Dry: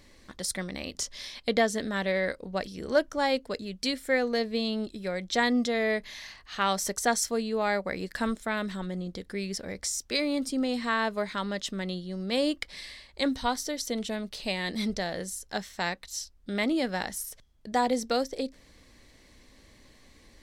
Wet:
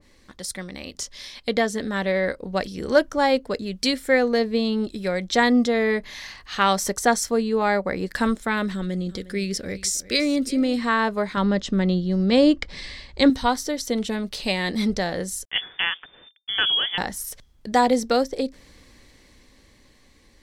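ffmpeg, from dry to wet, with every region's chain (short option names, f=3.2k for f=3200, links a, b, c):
-filter_complex "[0:a]asettb=1/sr,asplit=3[a][b][c];[a]atrim=end=8.734[d];[b]atrim=start=8.73:end=10.79,asetpts=PTS-STARTPTS,afade=t=in:d=0.004:c=qsin,afade=t=out:st=2.056:d=0.004:c=qsin,equalizer=f=900:t=o:w=0.72:g=-11,aecho=1:1:358:0.133,atrim=end_sample=90846[e];[c]atrim=start=10.786[f];[d][e]acrossfade=d=0.004:c1=hsin:c2=qsin[g];[g][f]acrossfade=d=0.004:c1=qsin:c2=hsin,asettb=1/sr,asplit=3[h][i][j];[h]atrim=end=11.374[k];[i]atrim=start=11.37:end=13.3,asetpts=PTS-STARTPTS,afade=t=in:d=0.004:c=qsin,afade=t=out:st=1.926:d=0.004:c=qsin,lowpass=f=7.6k:w=0.5412,lowpass=f=7.6k:w=1.3066,lowshelf=f=350:g=8[l];[j]atrim=start=13.296[m];[k][l]acrossfade=d=0.004:c1=hsin:c2=qsin[n];[n][m]acrossfade=d=0.004:c1=qsin:c2=hsin,asettb=1/sr,asplit=3[o][p][q];[o]atrim=end=15.454[r];[p]atrim=start=15.45:end=16.98,asetpts=PTS-STARTPTS,afade=t=in:d=0.004:c=qsin,afade=t=out:st=1.526:d=0.004:c=qsin,bandreject=f=50:t=h:w=6,bandreject=f=100:t=h:w=6,bandreject=f=150:t=h:w=6,bandreject=f=200:t=h:w=6,bandreject=f=250:t=h:w=6,bandreject=f=300:t=h:w=6,bandreject=f=350:t=h:w=6,aeval=exprs='val(0)*gte(abs(val(0)),0.00251)':c=same,lowpass=f=3.1k:t=q:w=0.5098,lowpass=f=3.1k:t=q:w=0.6013,lowpass=f=3.1k:t=q:w=0.9,lowpass=f=3.1k:t=q:w=2.563,afreqshift=-3600[s];[q]atrim=start=16.976[t];[r][s]acrossfade=d=0.004:c1=hsin:c2=qsin[u];[u][t]acrossfade=d=0.004:c1=qsin:c2=hsin,bandreject=f=650:w=12,dynaudnorm=f=330:g=11:m=8dB,adynamicequalizer=threshold=0.0158:dfrequency=1800:dqfactor=0.7:tfrequency=1800:tqfactor=0.7:attack=5:release=100:ratio=0.375:range=4:mode=cutabove:tftype=highshelf"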